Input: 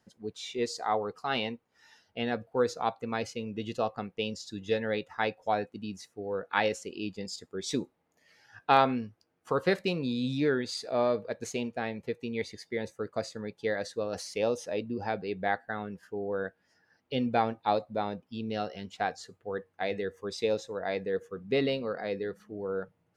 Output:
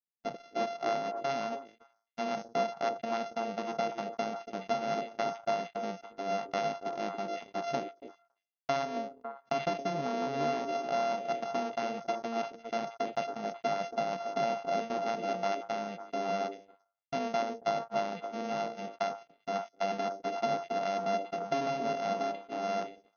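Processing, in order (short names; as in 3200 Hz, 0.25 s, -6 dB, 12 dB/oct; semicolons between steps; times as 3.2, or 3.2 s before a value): sample sorter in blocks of 64 samples; low shelf 190 Hz +5.5 dB; compressor 5:1, threshold -29 dBFS, peak gain reduction 12.5 dB; on a send: delay with a stepping band-pass 0.275 s, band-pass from 390 Hz, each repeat 1.4 oct, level -2 dB; on the sum: FFT band-pass 130–6600 Hz; gate -38 dBFS, range -55 dB; dynamic EQ 730 Hz, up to +8 dB, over -48 dBFS, Q 1.5; sustainer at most 140 dB/s; gain -4 dB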